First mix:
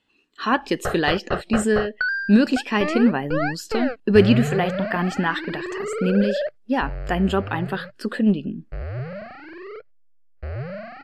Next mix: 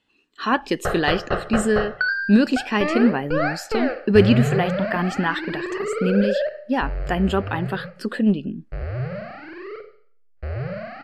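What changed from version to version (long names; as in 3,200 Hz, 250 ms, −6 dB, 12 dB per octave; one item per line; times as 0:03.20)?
reverb: on, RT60 0.55 s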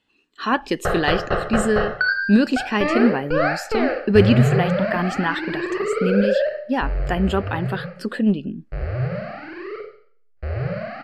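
background: send +7.0 dB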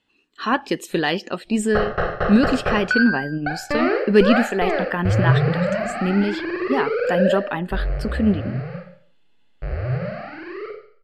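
background: entry +0.90 s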